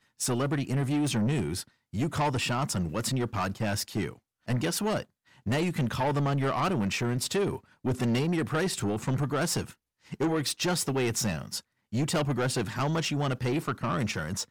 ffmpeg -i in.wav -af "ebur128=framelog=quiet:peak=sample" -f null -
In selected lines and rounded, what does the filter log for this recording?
Integrated loudness:
  I:         -29.3 LUFS
  Threshold: -39.5 LUFS
Loudness range:
  LRA:         2.0 LU
  Threshold: -49.5 LUFS
  LRA low:   -30.6 LUFS
  LRA high:  -28.5 LUFS
Sample peak:
  Peak:      -22.6 dBFS